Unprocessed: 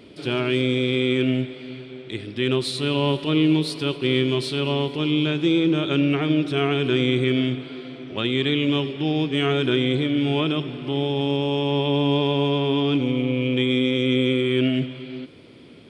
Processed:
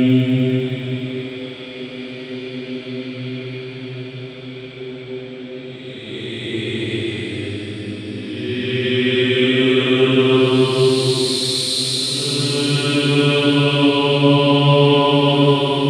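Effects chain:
extreme stretch with random phases 8.9×, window 0.25 s, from 0:01.38
delay with a high-pass on its return 100 ms, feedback 83%, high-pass 5,100 Hz, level −6.5 dB
level +7.5 dB

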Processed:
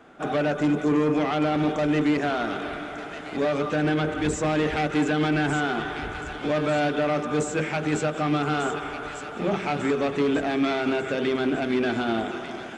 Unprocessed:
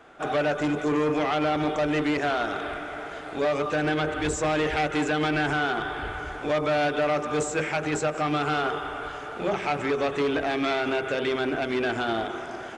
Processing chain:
parametric band 210 Hz +9.5 dB 1.2 octaves
on a send: delay with a high-pass on its return 1,196 ms, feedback 48%, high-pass 1,700 Hz, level −8 dB
on the sum: level −1.5 dB

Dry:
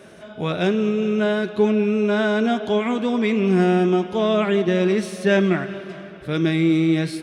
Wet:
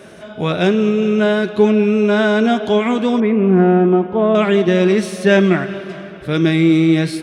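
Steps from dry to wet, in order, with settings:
0:03.20–0:04.35: low-pass filter 1,400 Hz 12 dB per octave
level +5.5 dB

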